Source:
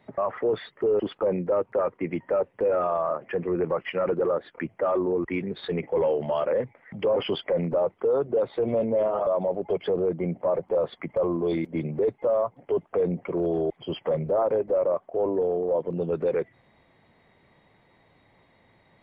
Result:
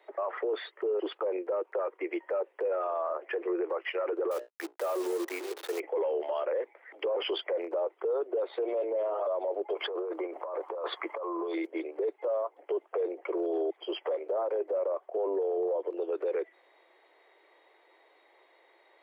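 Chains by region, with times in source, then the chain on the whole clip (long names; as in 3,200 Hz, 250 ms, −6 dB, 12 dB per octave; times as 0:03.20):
0:04.31–0:05.80: hold until the input has moved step −33 dBFS + mains-hum notches 60/120/180/240/300/360/420/480/540/600 Hz + slack as between gear wheels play −41.5 dBFS
0:09.74–0:11.54: parametric band 1,100 Hz +11.5 dB 0.82 octaves + compressor whose output falls as the input rises −32 dBFS
whole clip: Butterworth high-pass 330 Hz 72 dB per octave; brickwall limiter −24 dBFS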